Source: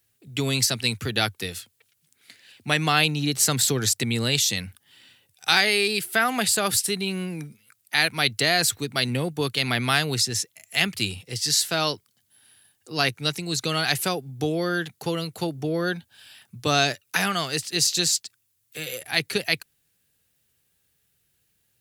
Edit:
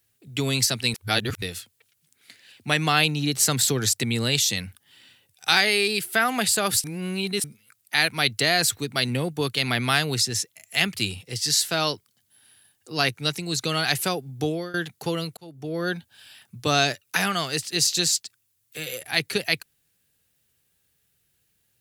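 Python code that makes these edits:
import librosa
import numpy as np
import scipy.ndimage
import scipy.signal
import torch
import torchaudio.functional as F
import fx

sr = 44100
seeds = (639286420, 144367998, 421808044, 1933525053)

y = fx.edit(x, sr, fx.reverse_span(start_s=0.94, length_s=0.48),
    fx.reverse_span(start_s=6.84, length_s=0.6),
    fx.fade_out_to(start_s=14.48, length_s=0.26, floor_db=-19.0),
    fx.fade_in_span(start_s=15.37, length_s=0.56), tone=tone)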